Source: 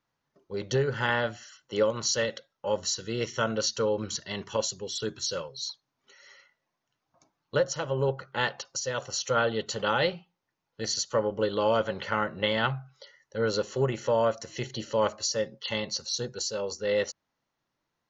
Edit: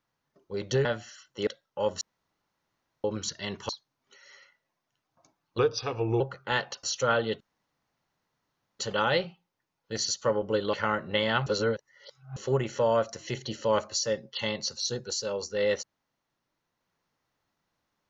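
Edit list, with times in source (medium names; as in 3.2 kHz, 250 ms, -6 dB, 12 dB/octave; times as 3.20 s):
0.85–1.19 s: delete
1.81–2.34 s: delete
2.88–3.91 s: room tone
4.56–5.66 s: delete
7.55–8.08 s: speed 85%
8.71–9.11 s: delete
9.68 s: insert room tone 1.39 s
11.62–12.02 s: delete
12.75–13.65 s: reverse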